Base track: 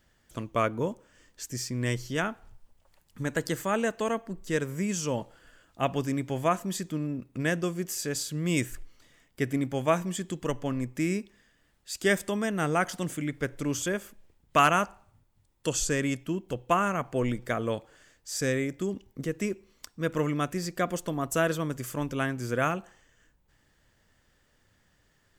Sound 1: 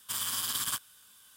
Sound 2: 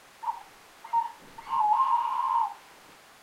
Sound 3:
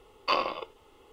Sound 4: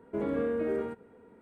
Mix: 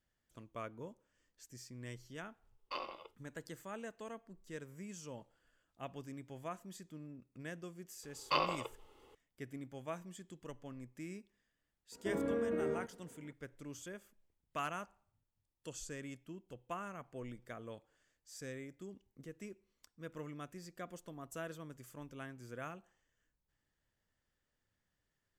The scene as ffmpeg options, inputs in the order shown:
-filter_complex "[3:a]asplit=2[a][b];[0:a]volume=-18.5dB[c];[a]agate=range=-33dB:threshold=-47dB:ratio=3:release=100:detection=peak,atrim=end=1.12,asetpts=PTS-STARTPTS,volume=-16dB,afade=t=in:d=0.004:c=hsin,afade=t=out:st=1.116:d=0.004:c=hsin,adelay=2430[d];[b]atrim=end=1.12,asetpts=PTS-STARTPTS,volume=-6dB,afade=t=in:d=0.004:c=hsin,afade=t=out:st=1.116:d=0.004:c=hsin,adelay=8030[e];[4:a]atrim=end=1.41,asetpts=PTS-STARTPTS,volume=-5.5dB,afade=t=in:d=0.004:c=hsin,afade=t=out:st=1.406:d=0.004:c=hsin,adelay=11920[f];[c][d][e][f]amix=inputs=4:normalize=0"

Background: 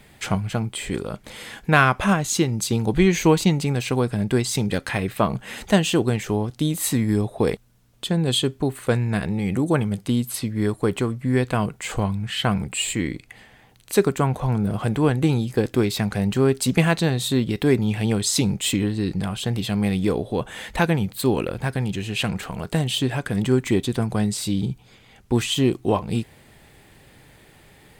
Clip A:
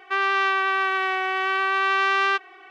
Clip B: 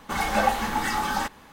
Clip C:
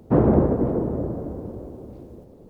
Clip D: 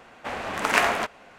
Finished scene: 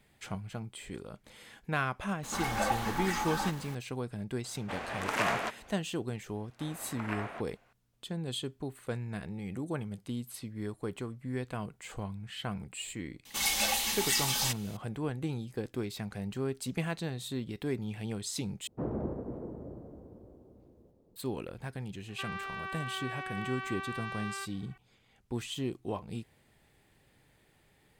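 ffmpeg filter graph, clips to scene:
-filter_complex "[2:a]asplit=2[a][b];[4:a]asplit=2[c][d];[0:a]volume=-15.5dB[e];[a]aeval=exprs='val(0)+0.5*0.0178*sgn(val(0))':c=same[f];[c]alimiter=level_in=8.5dB:limit=-1dB:release=50:level=0:latency=1[g];[d]acrossover=split=2900[h][i];[i]acompressor=threshold=-48dB:ratio=4:attack=1:release=60[j];[h][j]amix=inputs=2:normalize=0[k];[b]aexciter=amount=10.4:drive=1.5:freq=2.2k[l];[1:a]alimiter=limit=-15dB:level=0:latency=1:release=71[m];[e]asplit=2[n][o];[n]atrim=end=18.674[p];[3:a]atrim=end=2.49,asetpts=PTS-STARTPTS,volume=-18dB[q];[o]atrim=start=21.156[r];[f]atrim=end=1.52,asetpts=PTS-STARTPTS,volume=-9dB,afade=t=in:d=0.004:c=hsin,afade=t=out:st=1.516:d=0.004:c=hsin,adelay=2230[s];[g]atrim=end=1.38,asetpts=PTS-STARTPTS,volume=-16dB,afade=t=in:d=0.004:c=hsin,afade=t=out:st=1.376:d=0.004:c=hsin,adelay=4440[t];[k]atrim=end=1.38,asetpts=PTS-STARTPTS,volume=-17dB,afade=t=in:d=0.004:c=hsin,afade=t=out:st=1.376:d=0.004:c=hsin,adelay=6350[u];[l]atrim=end=1.52,asetpts=PTS-STARTPTS,volume=-13.5dB,afade=t=in:d=0.004:c=hsin,afade=t=out:st=1.516:d=0.004:c=hsin,adelay=13250[v];[m]atrim=end=2.7,asetpts=PTS-STARTPTS,volume=-14.5dB,afade=t=in:d=0.004:c=hsin,afade=t=out:st=2.696:d=0.004:c=hsin,adelay=22080[w];[p][q]acrossfade=d=0.004:c1=hsin:c2=hsin[x];[x][r]acrossfade=d=0.004:c1=hsin:c2=hsin[y];[y][s][t][u][v][w]amix=inputs=6:normalize=0"

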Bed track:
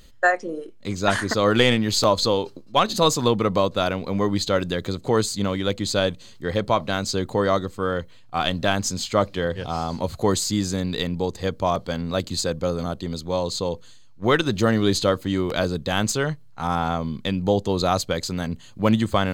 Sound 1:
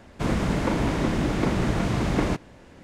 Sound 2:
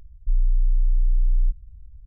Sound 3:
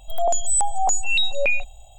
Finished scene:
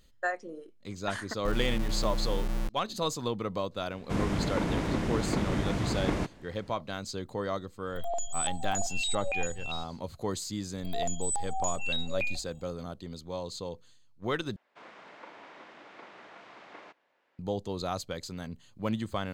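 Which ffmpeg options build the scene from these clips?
-filter_complex "[1:a]asplit=2[a][b];[3:a]asplit=2[c][d];[0:a]volume=-12.5dB[e];[2:a]acrusher=bits=3:mix=0:aa=0.000001[f];[c]aecho=1:1:679:0.531[g];[b]highpass=710,lowpass=3.6k[h];[e]asplit=2[i][j];[i]atrim=end=14.564[k];[h]atrim=end=2.83,asetpts=PTS-STARTPTS,volume=-17dB[l];[j]atrim=start=17.386[m];[f]atrim=end=2.06,asetpts=PTS-STARTPTS,volume=-12dB,afade=t=in:d=0.004:c=hsin,afade=t=out:st=2.056:d=0.004:c=hsin,adelay=1180[n];[a]atrim=end=2.83,asetpts=PTS-STARTPTS,volume=-6dB,afade=t=in:d=0.004:c=hsin,afade=t=out:st=2.826:d=0.004:c=hsin,adelay=3900[o];[g]atrim=end=1.98,asetpts=PTS-STARTPTS,volume=-12.5dB,afade=t=in:d=0.004:c=hsin,afade=t=out:st=1.976:d=0.004:c=hsin,adelay=346626S[p];[d]atrim=end=1.98,asetpts=PTS-STARTPTS,volume=-12dB,afade=t=in:d=0.004:c=hsin,afade=t=out:st=1.976:d=0.004:c=hsin,adelay=10750[q];[k][l]acrossfade=d=0.004:c1=hsin:c2=hsin[r];[r][m]acrossfade=d=0.004:c1=hsin:c2=hsin[s];[s][n][o][p][q]amix=inputs=5:normalize=0"

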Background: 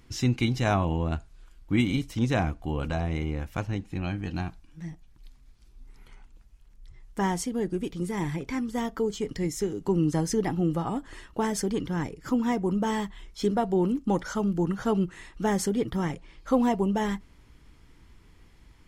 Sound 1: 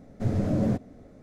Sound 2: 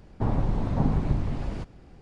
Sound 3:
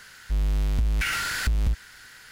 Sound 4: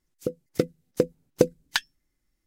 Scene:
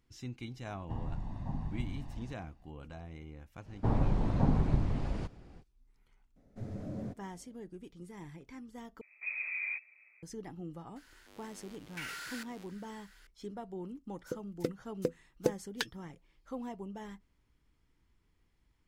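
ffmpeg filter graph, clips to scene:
-filter_complex "[2:a]asplit=2[a][b];[1:a]asplit=2[c][d];[0:a]volume=-18dB[e];[a]aecho=1:1:1.1:0.66[f];[d]lowpass=f=2.2k:t=q:w=0.5098,lowpass=f=2.2k:t=q:w=0.6013,lowpass=f=2.2k:t=q:w=0.9,lowpass=f=2.2k:t=q:w=2.563,afreqshift=-2600[g];[3:a]highpass=f=270:w=0.5412,highpass=f=270:w=1.3066[h];[e]asplit=2[i][j];[i]atrim=end=9.014[k];[g]atrim=end=1.22,asetpts=PTS-STARTPTS,volume=-13dB[l];[j]atrim=start=10.226[m];[f]atrim=end=2.01,asetpts=PTS-STARTPTS,volume=-17dB,afade=t=in:d=0.004:c=hsin,afade=t=out:st=2.006:d=0.004:c=hsin,adelay=690[n];[b]atrim=end=2.01,asetpts=PTS-STARTPTS,volume=-3.5dB,afade=t=in:d=0.05,afade=t=out:st=1.96:d=0.05,adelay=3630[o];[c]atrim=end=1.22,asetpts=PTS-STARTPTS,volume=-15.5dB,afade=t=in:d=0.004:c=hsin,afade=t=out:st=1.216:d=0.004:c=hsin,adelay=6360[p];[h]atrim=end=2.31,asetpts=PTS-STARTPTS,volume=-15dB,afade=t=in:d=0.004:c=hsin,afade=t=out:st=2.306:d=0.004:c=hsin,adelay=10960[q];[4:a]atrim=end=2.46,asetpts=PTS-STARTPTS,volume=-10.5dB,afade=t=in:d=0.004:c=hsin,afade=t=out:st=2.456:d=0.004:c=hsin,adelay=14050[r];[k][l]acrossfade=d=0.004:c1=hsin:c2=hsin[s];[s][m]acrossfade=d=0.004:c1=hsin:c2=hsin[t];[t][n][o][p][q][r]amix=inputs=6:normalize=0"

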